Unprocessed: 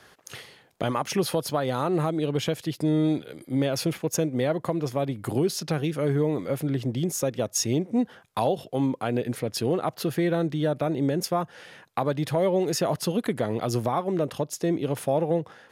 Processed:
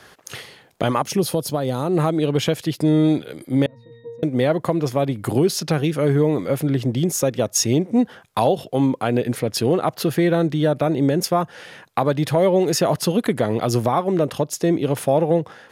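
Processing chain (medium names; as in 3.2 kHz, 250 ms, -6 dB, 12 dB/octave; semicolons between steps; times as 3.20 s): 1.02–1.97 s: peaking EQ 1.6 kHz -9.5 dB 2.4 oct; 3.66–4.23 s: pitch-class resonator A#, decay 0.64 s; trim +6.5 dB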